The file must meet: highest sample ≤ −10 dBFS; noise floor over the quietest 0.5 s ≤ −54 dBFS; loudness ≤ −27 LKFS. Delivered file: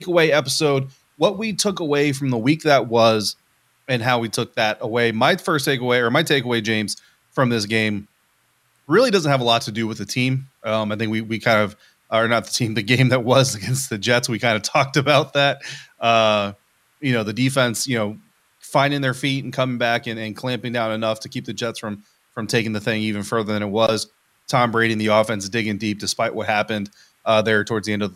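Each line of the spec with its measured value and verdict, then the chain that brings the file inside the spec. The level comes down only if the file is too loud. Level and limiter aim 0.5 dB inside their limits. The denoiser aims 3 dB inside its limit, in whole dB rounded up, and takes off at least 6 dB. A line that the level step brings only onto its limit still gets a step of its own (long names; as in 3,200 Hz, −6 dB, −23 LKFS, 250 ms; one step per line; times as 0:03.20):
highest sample −3.0 dBFS: out of spec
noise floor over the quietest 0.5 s −63 dBFS: in spec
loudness −20.0 LKFS: out of spec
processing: level −7.5 dB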